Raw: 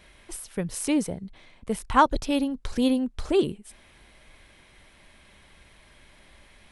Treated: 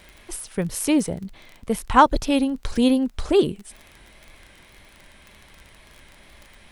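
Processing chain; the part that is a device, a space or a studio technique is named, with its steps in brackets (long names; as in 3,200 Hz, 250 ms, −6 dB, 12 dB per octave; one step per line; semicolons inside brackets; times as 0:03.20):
vinyl LP (tape wow and flutter; surface crackle 29 per second −37 dBFS; pink noise bed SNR 45 dB)
level +4.5 dB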